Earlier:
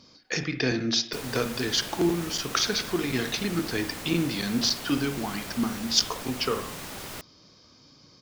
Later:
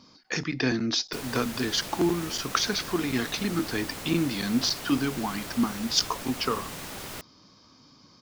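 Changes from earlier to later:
speech: add graphic EQ with 10 bands 250 Hz +5 dB, 500 Hz −3 dB, 1,000 Hz +7 dB
reverb: off

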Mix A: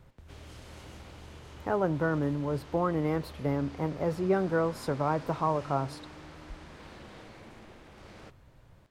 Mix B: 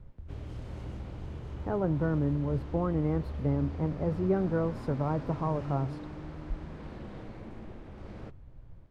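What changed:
speech −6.5 dB
master: add spectral tilt −3.5 dB per octave

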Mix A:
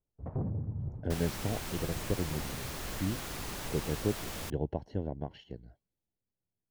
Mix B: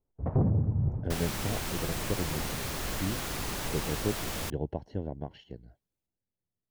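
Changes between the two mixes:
first sound +7.5 dB
second sound +5.0 dB
reverb: on, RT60 1.4 s

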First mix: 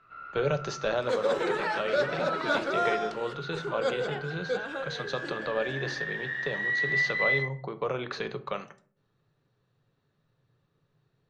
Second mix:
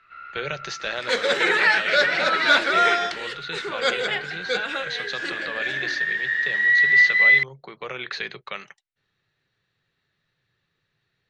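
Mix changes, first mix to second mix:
speech: send off
second sound +7.5 dB
master: add octave-band graphic EQ 125/250/500/1,000/2,000/4,000/8,000 Hz −5/−4/−4/−4/+11/+6/+3 dB

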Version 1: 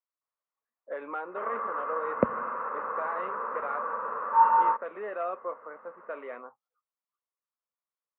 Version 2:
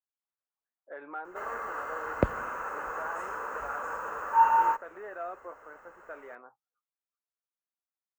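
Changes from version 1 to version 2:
speech: add transistor ladder low-pass 2,000 Hz, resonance 25%
master: remove loudspeaker in its box 180–2,100 Hz, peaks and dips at 220 Hz +8 dB, 330 Hz −4 dB, 510 Hz +5 dB, 780 Hz −4 dB, 1,100 Hz +8 dB, 1,600 Hz −5 dB

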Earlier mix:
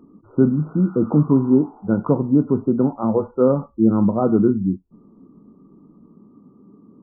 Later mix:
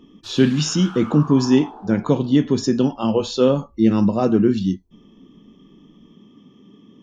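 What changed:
background +7.5 dB
master: remove linear-phase brick-wall low-pass 1,500 Hz

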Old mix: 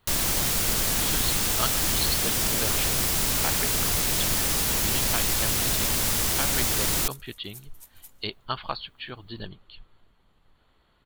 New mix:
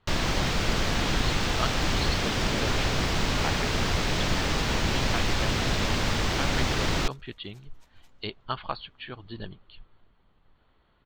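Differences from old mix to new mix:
first sound +4.0 dB
master: add high-frequency loss of the air 180 metres

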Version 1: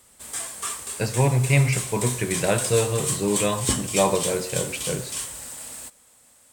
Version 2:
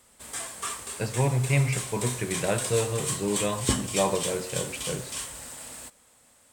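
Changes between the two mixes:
speech −4.5 dB
master: add high-shelf EQ 5,500 Hz −6.5 dB

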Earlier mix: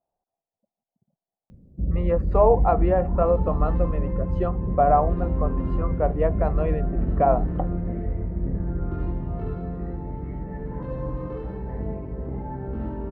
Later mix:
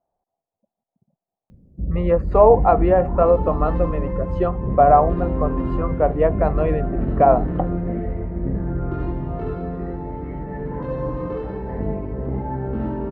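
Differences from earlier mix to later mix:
speech +5.5 dB
second sound +7.0 dB

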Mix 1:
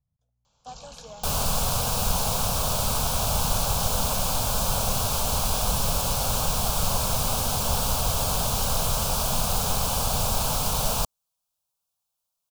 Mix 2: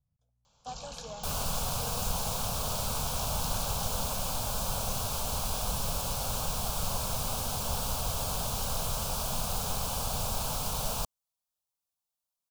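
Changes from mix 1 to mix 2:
second sound −7.5 dB
reverb: on, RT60 1.4 s

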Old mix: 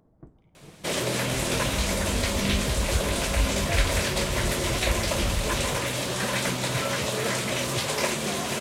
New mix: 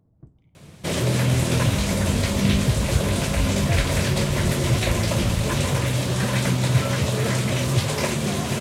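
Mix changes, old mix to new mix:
first sound −8.5 dB
master: add parametric band 100 Hz +14 dB 2.2 octaves

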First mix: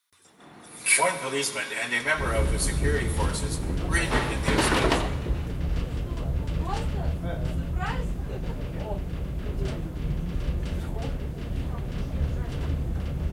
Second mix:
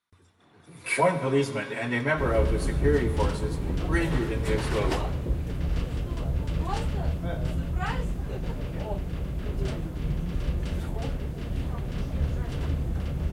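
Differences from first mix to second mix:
speech: add spectral tilt −4.5 dB per octave
first sound −11.5 dB

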